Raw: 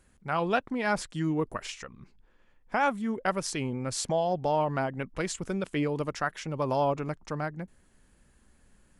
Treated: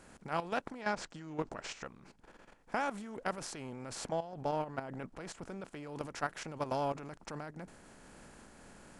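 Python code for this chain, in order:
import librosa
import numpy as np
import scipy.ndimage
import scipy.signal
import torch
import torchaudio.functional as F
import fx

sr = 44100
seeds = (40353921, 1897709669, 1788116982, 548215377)

y = fx.bin_compress(x, sr, power=0.6)
y = fx.lowpass(y, sr, hz=7500.0, slope=24, at=(0.81, 1.85))
y = fx.high_shelf(y, sr, hz=2600.0, db=-5.5, at=(3.95, 5.74))
y = fx.level_steps(y, sr, step_db=12)
y = fx.am_noise(y, sr, seeds[0], hz=5.7, depth_pct=50)
y = F.gain(torch.from_numpy(y), -5.5).numpy()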